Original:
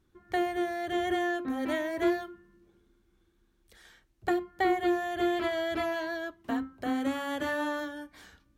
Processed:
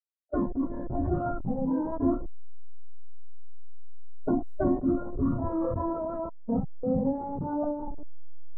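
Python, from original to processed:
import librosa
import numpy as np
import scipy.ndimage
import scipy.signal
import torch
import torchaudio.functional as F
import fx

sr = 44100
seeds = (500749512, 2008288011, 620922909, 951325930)

y = fx.delta_hold(x, sr, step_db=-31.0)
y = scipy.signal.sosfilt(scipy.signal.bessel(6, 660.0, 'lowpass', norm='mag', fs=sr, output='sos'), y)
y = fx.formant_shift(y, sr, semitones=-4)
y = fx.noise_reduce_blind(y, sr, reduce_db=14)
y = fx.env_flatten(y, sr, amount_pct=50)
y = F.gain(torch.from_numpy(y), 3.5).numpy()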